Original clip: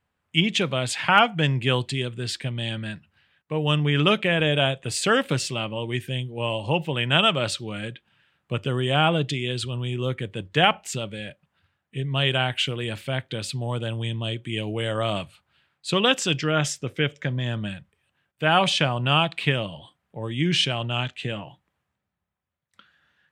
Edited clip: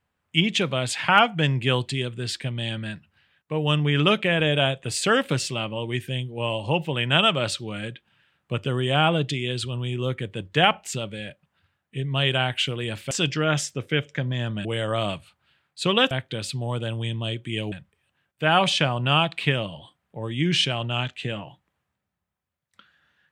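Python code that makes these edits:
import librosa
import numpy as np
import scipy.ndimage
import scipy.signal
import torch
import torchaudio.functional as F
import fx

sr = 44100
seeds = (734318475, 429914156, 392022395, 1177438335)

y = fx.edit(x, sr, fx.swap(start_s=13.11, length_s=1.61, other_s=16.18, other_length_s=1.54), tone=tone)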